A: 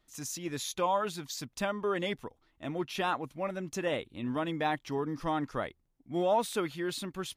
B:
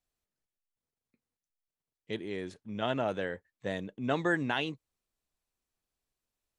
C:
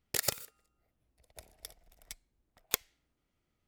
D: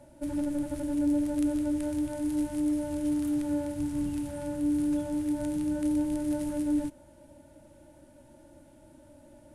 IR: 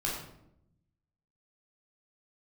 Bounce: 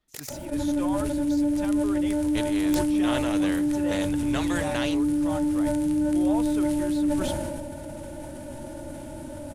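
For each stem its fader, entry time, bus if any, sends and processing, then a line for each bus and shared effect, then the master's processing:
-6.5 dB, 0.00 s, no send, dry
0.0 dB, 0.25 s, no send, spectral compressor 2:1
-9.0 dB, 0.00 s, no send, dry
+0.5 dB, 0.30 s, send -20.5 dB, fast leveller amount 50%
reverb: on, RT60 0.75 s, pre-delay 12 ms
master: sustainer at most 22 dB/s

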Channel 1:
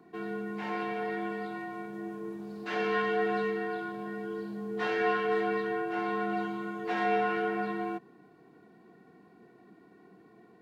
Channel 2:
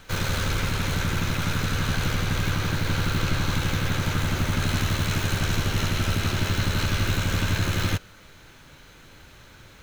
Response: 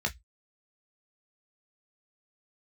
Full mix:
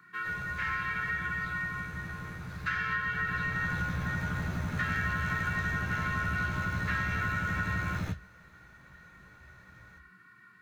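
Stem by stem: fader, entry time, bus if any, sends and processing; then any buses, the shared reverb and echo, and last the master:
-0.5 dB, 0.00 s, send -13.5 dB, EQ curve 100 Hz 0 dB, 670 Hz -27 dB, 1300 Hz +14 dB, 3500 Hz +7 dB; compressor, threshold -28 dBFS, peak gain reduction 10 dB
3.04 s -23.5 dB -> 3.78 s -14.5 dB, 0.15 s, send -5.5 dB, dry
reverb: on, RT60 0.10 s, pre-delay 13 ms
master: bell 150 Hz +7 dB 0.59 oct; compressor 2:1, threshold -29 dBFS, peak gain reduction 3 dB

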